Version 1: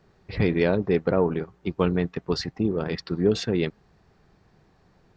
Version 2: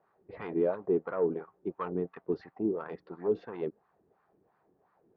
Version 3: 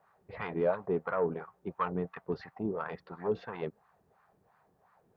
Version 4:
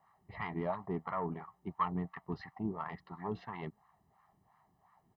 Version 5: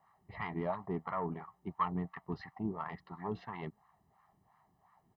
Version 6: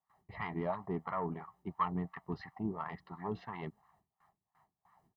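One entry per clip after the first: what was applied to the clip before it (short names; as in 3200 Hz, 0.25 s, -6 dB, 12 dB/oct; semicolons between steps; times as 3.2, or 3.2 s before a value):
soft clip -14.5 dBFS, distortion -16 dB; air absorption 160 m; wah 2.9 Hz 330–1200 Hz, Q 2.3
bell 330 Hz -14 dB 1.1 oct; gain +6.5 dB
comb 1 ms, depth 80%; gain -4 dB
nothing audible
gate with hold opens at -59 dBFS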